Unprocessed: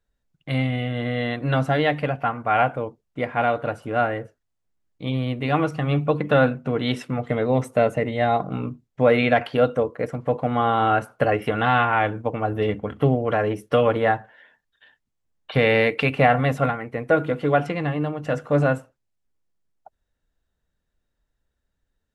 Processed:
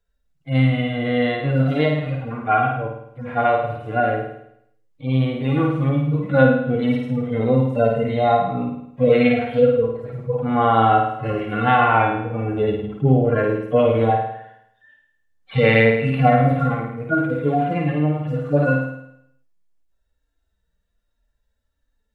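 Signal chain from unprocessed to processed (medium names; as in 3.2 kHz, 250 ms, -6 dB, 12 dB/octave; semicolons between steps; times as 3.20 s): harmonic-percussive separation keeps harmonic; flutter echo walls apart 9.1 m, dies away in 0.74 s; trim +3 dB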